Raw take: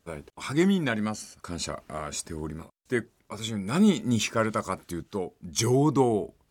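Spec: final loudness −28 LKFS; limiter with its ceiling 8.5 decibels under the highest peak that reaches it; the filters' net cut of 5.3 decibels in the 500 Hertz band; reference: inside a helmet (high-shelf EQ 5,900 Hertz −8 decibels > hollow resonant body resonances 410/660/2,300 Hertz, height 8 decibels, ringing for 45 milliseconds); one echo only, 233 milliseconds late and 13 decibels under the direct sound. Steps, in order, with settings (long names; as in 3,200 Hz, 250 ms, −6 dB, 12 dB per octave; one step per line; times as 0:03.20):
parametric band 500 Hz −7.5 dB
brickwall limiter −20 dBFS
high-shelf EQ 5,900 Hz −8 dB
single-tap delay 233 ms −13 dB
hollow resonant body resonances 410/660/2,300 Hz, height 8 dB, ringing for 45 ms
level +3 dB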